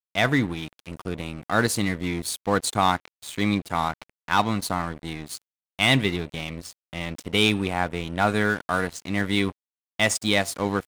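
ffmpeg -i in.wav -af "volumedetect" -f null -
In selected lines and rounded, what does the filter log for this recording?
mean_volume: -25.8 dB
max_volume: -6.6 dB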